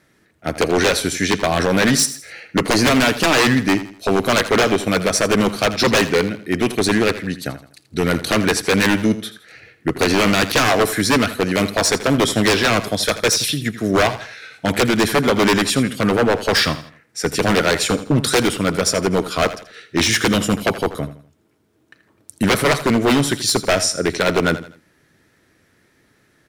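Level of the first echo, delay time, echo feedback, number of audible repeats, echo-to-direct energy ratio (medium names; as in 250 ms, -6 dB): -14.0 dB, 82 ms, 36%, 3, -13.5 dB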